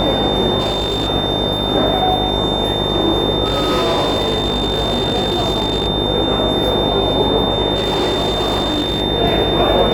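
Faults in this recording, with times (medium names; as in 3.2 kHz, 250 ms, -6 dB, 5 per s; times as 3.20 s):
buzz 50 Hz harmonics 19 -22 dBFS
whine 3.6 kHz -20 dBFS
0.59–1.09 s: clipped -14 dBFS
3.44–5.88 s: clipped -12.5 dBFS
7.75–9.02 s: clipped -13 dBFS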